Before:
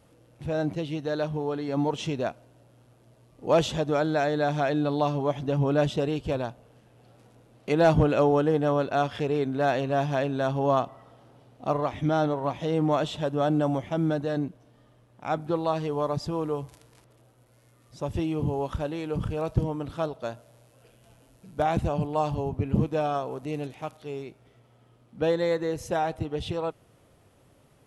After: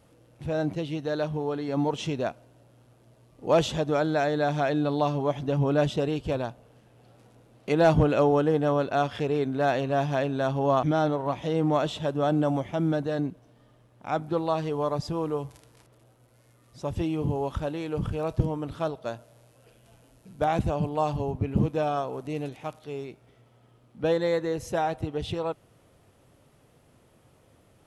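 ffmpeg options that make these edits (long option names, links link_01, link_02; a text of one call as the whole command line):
ffmpeg -i in.wav -filter_complex "[0:a]asplit=2[link_01][link_02];[link_01]atrim=end=10.832[link_03];[link_02]atrim=start=12.008[link_04];[link_03][link_04]acrossfade=duration=0.004:curve1=hsin:curve2=hsin" out.wav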